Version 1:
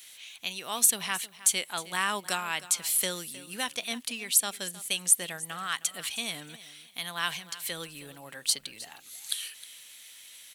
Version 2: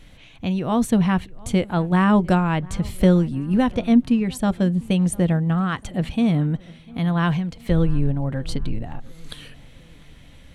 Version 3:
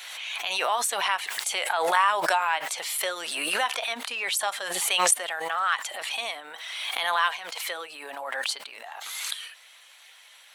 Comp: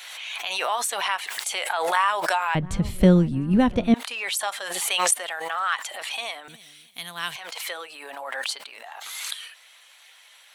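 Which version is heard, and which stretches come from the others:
3
2.55–3.94 from 2
6.48–7.36 from 1

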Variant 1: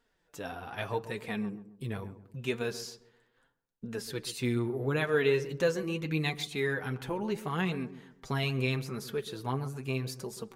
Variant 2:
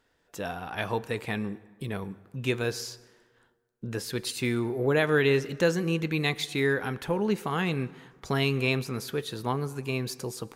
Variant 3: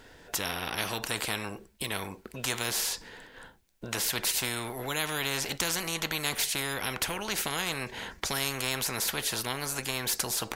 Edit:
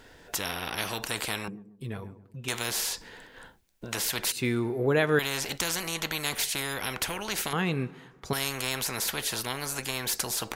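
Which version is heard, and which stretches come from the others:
3
1.48–2.48 from 1
4.32–5.19 from 2
7.53–8.33 from 2

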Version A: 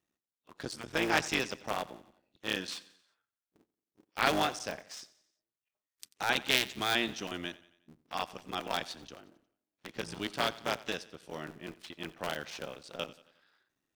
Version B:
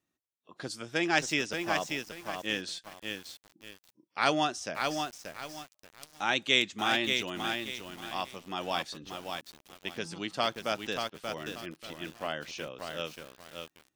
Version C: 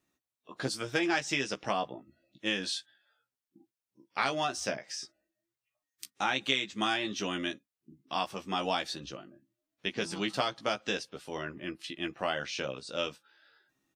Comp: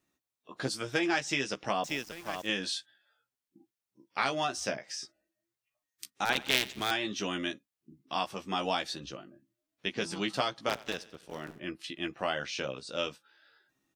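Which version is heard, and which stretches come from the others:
C
1.84–2.49 from B
6.25–6.91 from A
10.69–11.6 from A

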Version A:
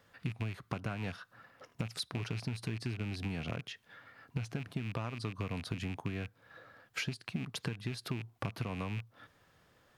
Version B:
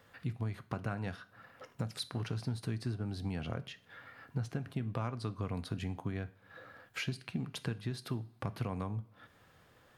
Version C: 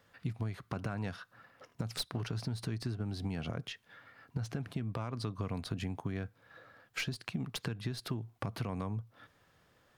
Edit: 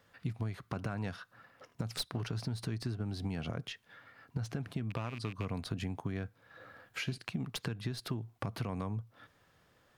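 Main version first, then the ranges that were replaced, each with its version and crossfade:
C
4.9–5.45 from A
6.6–7.18 from B

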